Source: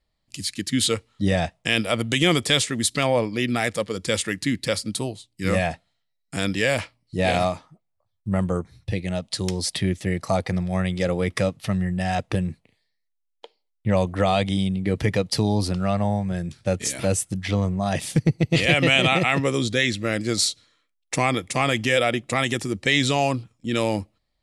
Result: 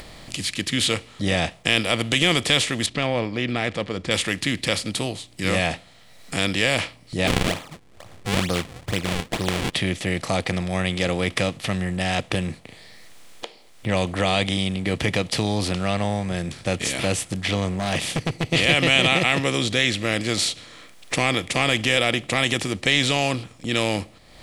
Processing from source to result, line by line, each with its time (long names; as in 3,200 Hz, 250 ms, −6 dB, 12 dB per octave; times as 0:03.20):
0:02.86–0:04.11: head-to-tape spacing loss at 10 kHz 29 dB
0:07.27–0:09.74: sample-and-hold swept by an LFO 41×, swing 160% 2.2 Hz
0:17.77–0:18.51: hard clipping −18.5 dBFS
whole clip: compressor on every frequency bin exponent 0.6; upward compression, threshold −25 dBFS; dynamic equaliser 2,900 Hz, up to +5 dB, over −34 dBFS, Q 1.6; level −5 dB